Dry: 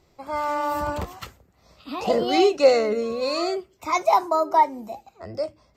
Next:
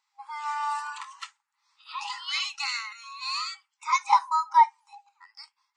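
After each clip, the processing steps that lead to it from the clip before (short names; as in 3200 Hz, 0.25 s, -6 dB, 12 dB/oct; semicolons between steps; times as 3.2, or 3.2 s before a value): spectral noise reduction 10 dB; FFT band-pass 800–11000 Hz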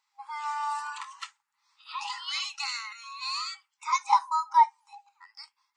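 dynamic EQ 2100 Hz, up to -5 dB, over -35 dBFS, Q 0.77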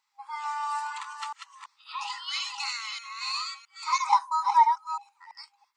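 reverse delay 0.332 s, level -5.5 dB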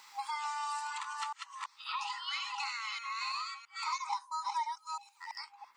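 three-band squash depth 100%; gain -7.5 dB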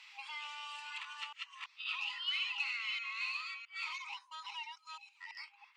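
soft clip -35 dBFS, distortion -13 dB; band-pass 2700 Hz, Q 3.9; gain +9.5 dB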